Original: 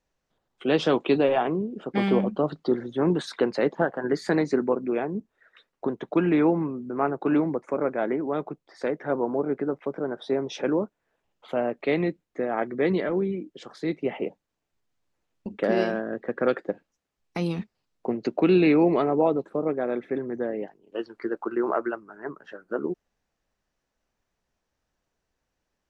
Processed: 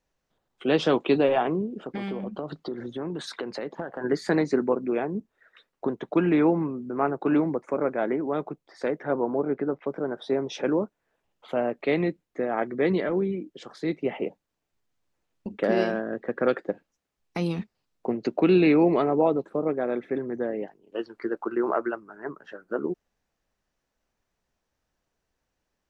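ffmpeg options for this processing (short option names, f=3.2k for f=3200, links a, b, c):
-filter_complex "[0:a]asettb=1/sr,asplit=3[a][b][c];[a]atrim=end=1.754[d];[b]atrim=start=1.75:end=4.01,asetpts=PTS-STARTPTS,afade=t=in:d=0.004:c=qsin,afade=t=out:st=2.256:d=0.004:c=qsin,acompressor=threshold=-28dB:ratio=8:attack=3.2:release=140:knee=1:detection=peak[e];[c]atrim=start=4.006[f];[d][e]acrossfade=d=0.004:c1=hsin:c2=qsin[g];[g][f]acrossfade=d=0.004:c1=qsin:c2=hsin,asettb=1/sr,asplit=3[h][i][j];[h]atrim=end=9.034[k];[i]atrim=start=9.03:end=9.87,asetpts=PTS-STARTPTS,afade=t=in:d=0.004:c=qsin,afade=t=out:st=0.836:d=0.004:c=qsin,lowpass=5k[l];[j]atrim=start=9.866[m];[k][l]acrossfade=d=0.004:c1=hsin:c2=qsin[n];[n][m]acrossfade=d=0.004:c1=qsin:c2=hsin"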